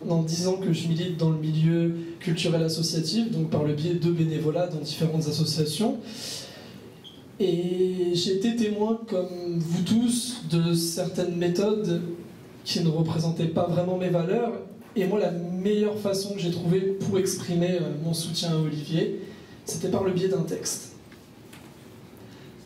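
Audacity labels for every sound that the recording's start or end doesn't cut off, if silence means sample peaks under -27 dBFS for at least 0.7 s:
7.400000	20.770000	sound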